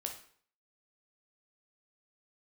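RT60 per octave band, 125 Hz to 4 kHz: 0.60, 0.55, 0.55, 0.55, 0.50, 0.45 seconds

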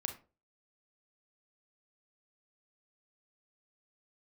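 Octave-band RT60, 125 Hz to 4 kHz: 0.40, 0.35, 0.40, 0.30, 0.25, 0.20 seconds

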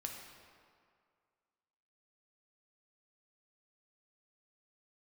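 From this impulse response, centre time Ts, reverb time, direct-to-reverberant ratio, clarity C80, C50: 63 ms, 2.1 s, 1.0 dB, 4.5 dB, 3.0 dB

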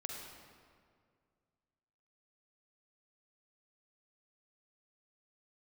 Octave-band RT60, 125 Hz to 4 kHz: 2.6, 2.3, 2.2, 1.9, 1.7, 1.3 seconds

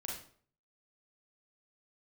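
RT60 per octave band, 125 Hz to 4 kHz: 0.65, 0.55, 0.55, 0.50, 0.45, 0.40 seconds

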